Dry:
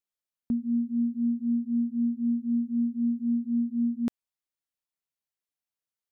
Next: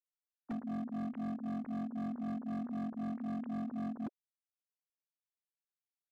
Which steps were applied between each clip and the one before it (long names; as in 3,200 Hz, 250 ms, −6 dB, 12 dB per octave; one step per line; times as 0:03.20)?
three sine waves on the formant tracks
high-frequency loss of the air 210 metres
gain into a clipping stage and back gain 30.5 dB
level −5.5 dB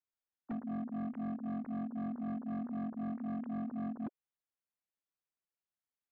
low-pass filter 2,300 Hz 12 dB per octave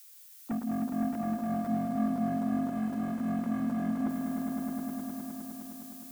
spike at every zero crossing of −51 dBFS
echo that builds up and dies away 103 ms, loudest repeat 5, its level −8 dB
level +6.5 dB